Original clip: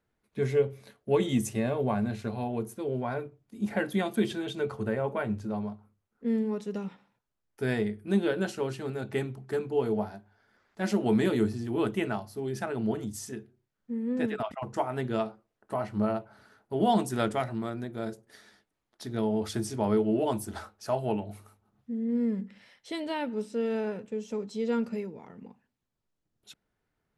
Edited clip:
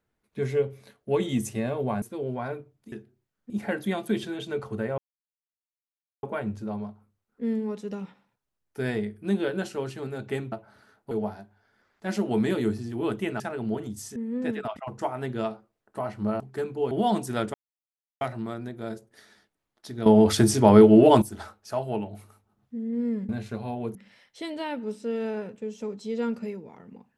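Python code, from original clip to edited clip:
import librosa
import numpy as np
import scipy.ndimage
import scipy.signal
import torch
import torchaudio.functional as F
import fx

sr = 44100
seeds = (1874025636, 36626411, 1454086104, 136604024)

y = fx.edit(x, sr, fx.move(start_s=2.02, length_s=0.66, to_s=22.45),
    fx.insert_silence(at_s=5.06, length_s=1.25),
    fx.swap(start_s=9.35, length_s=0.51, other_s=16.15, other_length_s=0.59),
    fx.cut(start_s=12.15, length_s=0.42),
    fx.move(start_s=13.33, length_s=0.58, to_s=3.58),
    fx.insert_silence(at_s=17.37, length_s=0.67),
    fx.clip_gain(start_s=19.22, length_s=1.16, db=12.0), tone=tone)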